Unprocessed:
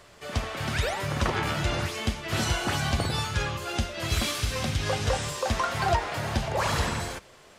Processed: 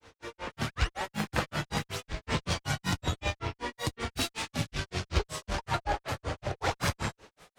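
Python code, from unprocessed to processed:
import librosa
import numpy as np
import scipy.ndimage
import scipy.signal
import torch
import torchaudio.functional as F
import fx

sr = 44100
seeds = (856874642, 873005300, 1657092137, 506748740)

y = fx.room_flutter(x, sr, wall_m=10.7, rt60_s=0.33)
y = fx.granulator(y, sr, seeds[0], grain_ms=145.0, per_s=5.3, spray_ms=100.0, spread_st=7)
y = fx.cheby_harmonics(y, sr, harmonics=(6,), levels_db=(-25,), full_scale_db=-13.5)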